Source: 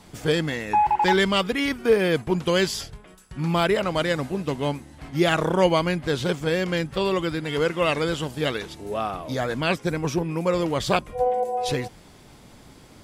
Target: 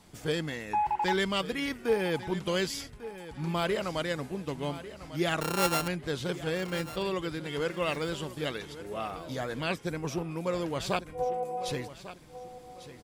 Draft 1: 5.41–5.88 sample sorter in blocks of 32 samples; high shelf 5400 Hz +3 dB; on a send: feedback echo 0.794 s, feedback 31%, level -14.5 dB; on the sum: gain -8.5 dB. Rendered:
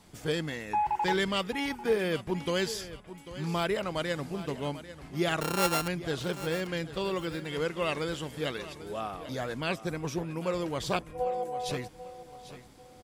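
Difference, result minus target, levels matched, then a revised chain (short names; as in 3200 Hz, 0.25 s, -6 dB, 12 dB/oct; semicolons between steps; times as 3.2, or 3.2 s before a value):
echo 0.353 s early
5.41–5.88 sample sorter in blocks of 32 samples; high shelf 5400 Hz +3 dB; on a send: feedback echo 1.147 s, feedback 31%, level -14.5 dB; on the sum: gain -8.5 dB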